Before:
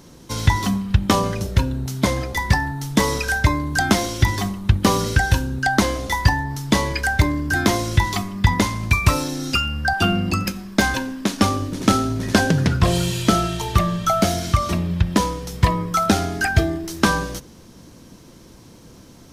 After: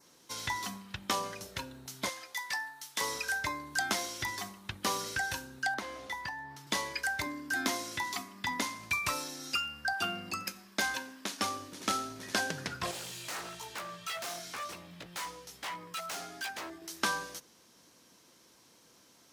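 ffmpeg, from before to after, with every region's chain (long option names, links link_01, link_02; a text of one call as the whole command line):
ffmpeg -i in.wav -filter_complex "[0:a]asettb=1/sr,asplit=3[link_01][link_02][link_03];[link_01]atrim=end=2.094[link_04];[link_02]atrim=start=2.09:end=3.01,asetpts=PTS-STARTPTS,afade=type=in:duration=0.004:curve=qsin,afade=type=out:start_time=0.916:duration=0.004:curve=qsin,highpass=frequency=1300:poles=1,asplit=2[link_05][link_06];[link_06]adelay=16,volume=-14dB[link_07];[link_05][link_07]amix=inputs=2:normalize=0,atrim=end_sample=40572[link_08];[link_03]atrim=start=3.006[link_09];[link_04][link_08]acrossfade=duration=0.004:curve1=hsin:curve2=qsin[link_10];[link_10][link_09]acrossfade=duration=0.004:curve1=qsin:curve2=hsin,asettb=1/sr,asplit=3[link_11][link_12][link_13];[link_11]atrim=end=5.744[link_14];[link_12]atrim=start=5.74:end=6.67,asetpts=PTS-STARTPTS,afade=type=in:duration=0.004:curve=qsin,afade=type=out:start_time=0.926:duration=0.004:curve=qsin,bass=frequency=250:gain=1,treble=frequency=4000:gain=-10,acrossover=split=510|4500[link_15][link_16][link_17];[link_15]acompressor=threshold=-21dB:ratio=4[link_18];[link_16]acompressor=threshold=-26dB:ratio=4[link_19];[link_17]acompressor=threshold=-41dB:ratio=4[link_20];[link_18][link_19][link_20]amix=inputs=3:normalize=0[link_21];[link_13]atrim=start=6.666[link_22];[link_14][link_21]acrossfade=duration=0.004:curve1=hsin:curve2=qsin[link_23];[link_23][link_22]acrossfade=duration=0.004:curve1=qsin:curve2=hsin,asettb=1/sr,asplit=3[link_24][link_25][link_26];[link_24]atrim=end=7.264[link_27];[link_25]atrim=start=7.26:end=8.79,asetpts=PTS-STARTPTS,afade=type=in:duration=0.004:curve=qsin,afade=type=out:start_time=1.526:duration=0.004:curve=qsin,highpass=frequency=140:poles=1,equalizer=frequency=260:width_type=o:width=0.22:gain=13.5[link_28];[link_26]atrim=start=8.786[link_29];[link_27][link_28]acrossfade=duration=0.004:curve1=hsin:curve2=qsin[link_30];[link_30][link_29]acrossfade=duration=0.004:curve1=qsin:curve2=hsin,asettb=1/sr,asplit=3[link_31][link_32][link_33];[link_31]atrim=end=12.914[link_34];[link_32]atrim=start=12.91:end=16.82,asetpts=PTS-STARTPTS,afade=type=in:duration=0.004:curve=qsin,afade=type=out:start_time=3.906:duration=0.004:curve=qsin,flanger=delay=15:depth=2.2:speed=1.1,aeval=exprs='0.0891*(abs(mod(val(0)/0.0891+3,4)-2)-1)':channel_layout=same[link_35];[link_33]atrim=start=16.816[link_36];[link_34][link_35]acrossfade=duration=0.004:curve1=hsin:curve2=qsin[link_37];[link_37][link_36]acrossfade=duration=0.004:curve1=qsin:curve2=hsin,highpass=frequency=1100:poles=1,adynamicequalizer=threshold=0.00708:dfrequency=3200:dqfactor=2.7:tfrequency=3200:tqfactor=2.7:attack=5:release=100:ratio=0.375:range=2:mode=cutabove:tftype=bell,volume=-9dB" out.wav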